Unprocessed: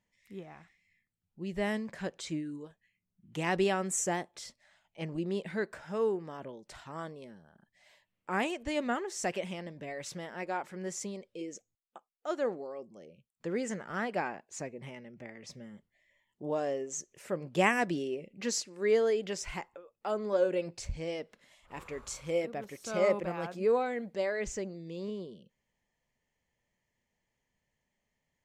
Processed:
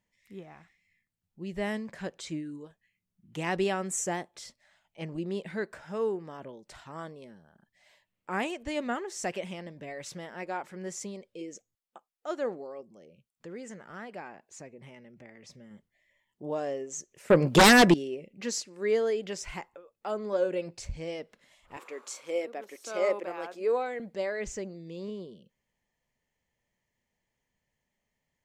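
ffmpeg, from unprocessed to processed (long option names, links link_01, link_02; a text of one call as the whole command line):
ffmpeg -i in.wav -filter_complex "[0:a]asettb=1/sr,asplit=3[link_01][link_02][link_03];[link_01]atrim=end=12.814[link_04];[link_02]atrim=start=12.81:end=15.71,asetpts=PTS-STARTPTS,afade=type=in:duration=0.004:curve=qsin,afade=type=out:start_time=2.896:duration=0.004:curve=qsin,acompressor=threshold=-53dB:ratio=1.5:attack=3.2:release=140:knee=1:detection=peak[link_05];[link_03]atrim=start=15.706[link_06];[link_04][link_05]acrossfade=duration=0.004:curve1=hsin:curve2=qsin[link_07];[link_07][link_06]acrossfade=duration=0.004:curve1=qsin:curve2=hsin,asettb=1/sr,asplit=3[link_08][link_09][link_10];[link_08]atrim=end=17.304[link_11];[link_09]atrim=start=17.3:end=17.94,asetpts=PTS-STARTPTS,afade=type=in:duration=0.004:curve=qsin,afade=type=out:start_time=0.636:duration=0.004:curve=qsin,aeval=exprs='0.237*sin(PI/2*4.47*val(0)/0.237)':channel_layout=same[link_12];[link_10]atrim=start=17.936[link_13];[link_11][link_12]acrossfade=duration=0.004:curve1=hsin:curve2=qsin[link_14];[link_14][link_13]acrossfade=duration=0.004:curve1=qsin:curve2=hsin,asettb=1/sr,asplit=3[link_15][link_16][link_17];[link_15]atrim=end=21.774[link_18];[link_16]atrim=start=21.77:end=24,asetpts=PTS-STARTPTS,afade=type=in:duration=0.004:curve=qsin,afade=type=out:start_time=2.226:duration=0.004:curve=qsin,highpass=frequency=290:width=0.5412,highpass=frequency=290:width=1.3066[link_19];[link_17]atrim=start=23.996[link_20];[link_18][link_19]acrossfade=duration=0.004:curve1=hsin:curve2=qsin[link_21];[link_21][link_20]acrossfade=duration=0.004:curve1=qsin:curve2=hsin" out.wav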